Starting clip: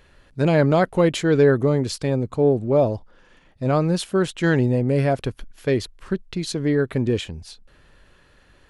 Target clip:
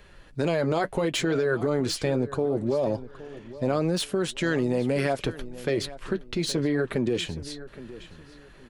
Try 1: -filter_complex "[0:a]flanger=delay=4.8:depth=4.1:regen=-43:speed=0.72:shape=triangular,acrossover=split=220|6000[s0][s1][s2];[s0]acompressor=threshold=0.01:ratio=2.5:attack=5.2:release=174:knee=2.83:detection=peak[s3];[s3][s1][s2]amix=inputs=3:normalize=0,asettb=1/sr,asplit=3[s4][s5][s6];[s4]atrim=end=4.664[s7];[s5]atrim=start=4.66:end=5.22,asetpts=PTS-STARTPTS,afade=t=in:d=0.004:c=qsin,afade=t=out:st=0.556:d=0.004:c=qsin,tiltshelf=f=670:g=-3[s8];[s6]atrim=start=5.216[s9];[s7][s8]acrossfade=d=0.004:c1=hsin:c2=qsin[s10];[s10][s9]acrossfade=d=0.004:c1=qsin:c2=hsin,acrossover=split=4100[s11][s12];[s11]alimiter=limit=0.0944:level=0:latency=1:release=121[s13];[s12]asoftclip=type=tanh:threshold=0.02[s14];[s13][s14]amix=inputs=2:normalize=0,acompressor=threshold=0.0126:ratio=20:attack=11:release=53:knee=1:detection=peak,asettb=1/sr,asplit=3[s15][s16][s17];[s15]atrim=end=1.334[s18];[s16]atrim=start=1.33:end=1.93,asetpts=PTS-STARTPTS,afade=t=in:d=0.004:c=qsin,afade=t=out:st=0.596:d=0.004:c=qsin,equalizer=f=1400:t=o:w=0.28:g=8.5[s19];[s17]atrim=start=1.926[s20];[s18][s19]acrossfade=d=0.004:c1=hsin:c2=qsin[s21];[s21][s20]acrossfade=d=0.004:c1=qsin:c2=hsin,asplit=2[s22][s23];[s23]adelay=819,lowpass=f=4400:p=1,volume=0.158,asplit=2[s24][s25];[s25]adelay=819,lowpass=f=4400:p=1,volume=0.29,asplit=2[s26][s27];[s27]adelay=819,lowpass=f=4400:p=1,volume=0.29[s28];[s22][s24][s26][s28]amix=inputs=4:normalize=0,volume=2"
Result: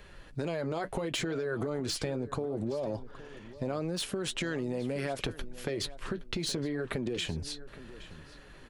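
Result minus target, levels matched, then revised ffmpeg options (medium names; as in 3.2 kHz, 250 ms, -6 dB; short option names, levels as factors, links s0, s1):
compression: peak gain reduction +9 dB
-filter_complex "[0:a]flanger=delay=4.8:depth=4.1:regen=-43:speed=0.72:shape=triangular,acrossover=split=220|6000[s0][s1][s2];[s0]acompressor=threshold=0.01:ratio=2.5:attack=5.2:release=174:knee=2.83:detection=peak[s3];[s3][s1][s2]amix=inputs=3:normalize=0,asettb=1/sr,asplit=3[s4][s5][s6];[s4]atrim=end=4.664[s7];[s5]atrim=start=4.66:end=5.22,asetpts=PTS-STARTPTS,afade=t=in:d=0.004:c=qsin,afade=t=out:st=0.556:d=0.004:c=qsin,tiltshelf=f=670:g=-3[s8];[s6]atrim=start=5.216[s9];[s7][s8]acrossfade=d=0.004:c1=hsin:c2=qsin[s10];[s10][s9]acrossfade=d=0.004:c1=qsin:c2=hsin,acrossover=split=4100[s11][s12];[s11]alimiter=limit=0.0944:level=0:latency=1:release=121[s13];[s12]asoftclip=type=tanh:threshold=0.02[s14];[s13][s14]amix=inputs=2:normalize=0,acompressor=threshold=0.0376:ratio=20:attack=11:release=53:knee=1:detection=peak,asettb=1/sr,asplit=3[s15][s16][s17];[s15]atrim=end=1.334[s18];[s16]atrim=start=1.33:end=1.93,asetpts=PTS-STARTPTS,afade=t=in:d=0.004:c=qsin,afade=t=out:st=0.596:d=0.004:c=qsin,equalizer=f=1400:t=o:w=0.28:g=8.5[s19];[s17]atrim=start=1.926[s20];[s18][s19]acrossfade=d=0.004:c1=hsin:c2=qsin[s21];[s21][s20]acrossfade=d=0.004:c1=qsin:c2=hsin,asplit=2[s22][s23];[s23]adelay=819,lowpass=f=4400:p=1,volume=0.158,asplit=2[s24][s25];[s25]adelay=819,lowpass=f=4400:p=1,volume=0.29,asplit=2[s26][s27];[s27]adelay=819,lowpass=f=4400:p=1,volume=0.29[s28];[s22][s24][s26][s28]amix=inputs=4:normalize=0,volume=2"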